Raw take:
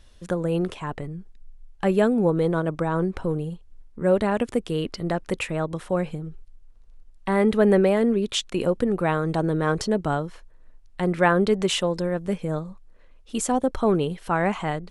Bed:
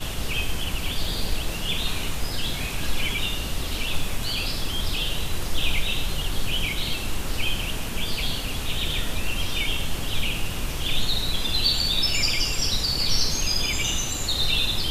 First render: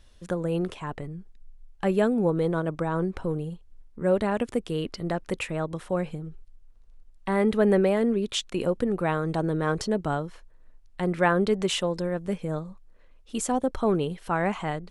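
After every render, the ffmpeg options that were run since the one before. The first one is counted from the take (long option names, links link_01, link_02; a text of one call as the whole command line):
ffmpeg -i in.wav -af "volume=-3dB" out.wav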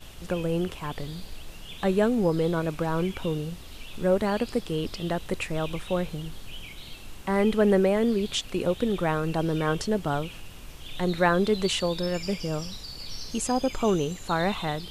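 ffmpeg -i in.wav -i bed.wav -filter_complex "[1:a]volume=-15.5dB[link_01];[0:a][link_01]amix=inputs=2:normalize=0" out.wav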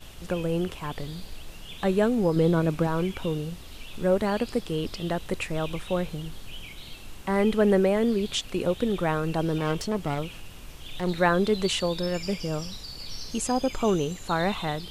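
ffmpeg -i in.wav -filter_complex "[0:a]asettb=1/sr,asplit=3[link_01][link_02][link_03];[link_01]atrim=end=2.364[link_04];[link_02]atrim=start=2.36:end=2.87,asetpts=PTS-STARTPTS,afade=type=in:duration=0.004:curve=qsin,afade=type=out:start_time=0.506:duration=0.004:curve=qsin,equalizer=frequency=200:width=0.6:gain=6[link_05];[link_03]atrim=start=2.866[link_06];[link_04][link_05]acrossfade=duration=0.004:curve1=hsin:curve2=qsin[link_07];[link_07][link_06]acrossfade=duration=0.004:curve1=qsin:curve2=hsin,asettb=1/sr,asplit=3[link_08][link_09][link_10];[link_08]atrim=end=9.584[link_11];[link_09]atrim=start=9.58:end=11.16,asetpts=PTS-STARTPTS,afade=type=in:duration=0.004:curve=qsin,afade=type=out:start_time=1.576:duration=0.004:curve=qsin,aeval=exprs='clip(val(0),-1,0.0299)':channel_layout=same[link_12];[link_10]atrim=start=11.156[link_13];[link_11][link_12]acrossfade=duration=0.004:curve1=hsin:curve2=qsin[link_14];[link_14][link_13]acrossfade=duration=0.004:curve1=qsin:curve2=hsin" out.wav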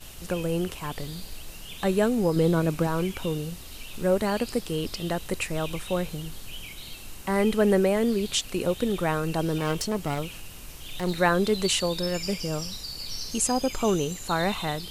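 ffmpeg -i in.wav -af "aemphasis=mode=production:type=cd,bandreject=frequency=3400:width=18" out.wav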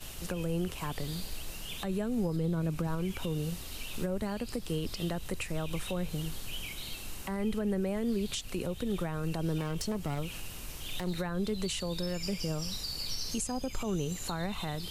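ffmpeg -i in.wav -filter_complex "[0:a]acrossover=split=180[link_01][link_02];[link_02]acompressor=threshold=-33dB:ratio=4[link_03];[link_01][link_03]amix=inputs=2:normalize=0,alimiter=limit=-23.5dB:level=0:latency=1:release=89" out.wav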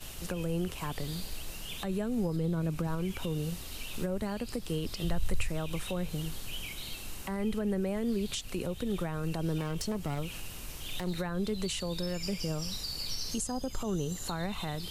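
ffmpeg -i in.wav -filter_complex "[0:a]asplit=3[link_01][link_02][link_03];[link_01]afade=type=out:start_time=5.03:duration=0.02[link_04];[link_02]asubboost=boost=6:cutoff=100,afade=type=in:start_time=5.03:duration=0.02,afade=type=out:start_time=5.48:duration=0.02[link_05];[link_03]afade=type=in:start_time=5.48:duration=0.02[link_06];[link_04][link_05][link_06]amix=inputs=3:normalize=0,asettb=1/sr,asplit=3[link_07][link_08][link_09];[link_07]atrim=end=13.364[link_10];[link_08]atrim=start=13.36:end=14.27,asetpts=PTS-STARTPTS,afade=type=in:duration=0.004:curve=qsin,afade=type=out:start_time=0.906:duration=0.004:curve=qsin,equalizer=frequency=2400:width_type=o:width=0.27:gain=-12.5[link_11];[link_09]atrim=start=14.266[link_12];[link_10][link_11]acrossfade=duration=0.004:curve1=hsin:curve2=qsin[link_13];[link_13][link_12]acrossfade=duration=0.004:curve1=qsin:curve2=hsin" out.wav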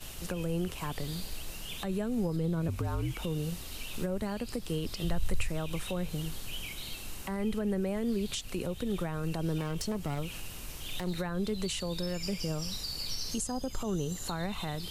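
ffmpeg -i in.wav -filter_complex "[0:a]asettb=1/sr,asplit=3[link_01][link_02][link_03];[link_01]atrim=end=2.684[link_04];[link_02]atrim=start=2.68:end=3.24,asetpts=PTS-STARTPTS,afade=type=in:duration=0.004:curve=qsin,afade=type=out:start_time=0.556:duration=0.004:curve=qsin,afreqshift=-59[link_05];[link_03]atrim=start=3.236[link_06];[link_04][link_05]acrossfade=duration=0.004:curve1=hsin:curve2=qsin[link_07];[link_07][link_06]acrossfade=duration=0.004:curve1=qsin:curve2=hsin" out.wav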